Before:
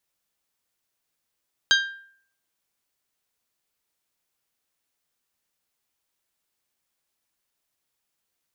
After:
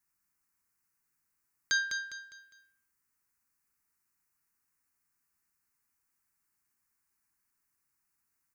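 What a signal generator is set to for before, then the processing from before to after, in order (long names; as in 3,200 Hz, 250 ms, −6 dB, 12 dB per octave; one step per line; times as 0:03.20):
struck glass bell, lowest mode 1,590 Hz, decay 0.58 s, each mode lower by 2 dB, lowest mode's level −15 dB
brickwall limiter −13.5 dBFS
phaser swept by the level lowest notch 570 Hz, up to 2,900 Hz, full sweep at −44 dBFS
on a send: repeating echo 203 ms, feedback 36%, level −7 dB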